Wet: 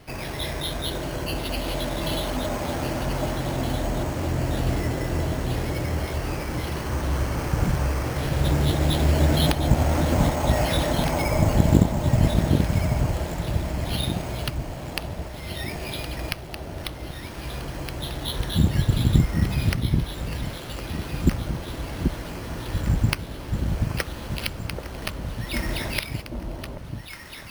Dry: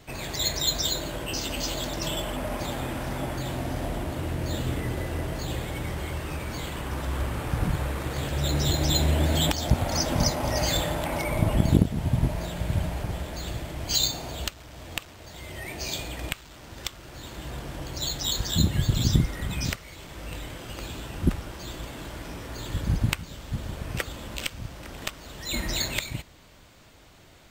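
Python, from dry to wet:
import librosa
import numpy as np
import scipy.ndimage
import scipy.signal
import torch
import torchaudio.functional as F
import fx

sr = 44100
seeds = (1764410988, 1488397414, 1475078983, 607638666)

y = np.repeat(scipy.signal.resample_poly(x, 1, 6), 6)[:len(x)]
y = fx.echo_alternate(y, sr, ms=783, hz=950.0, feedback_pct=63, wet_db=-4.0)
y = y * librosa.db_to_amplitude(3.0)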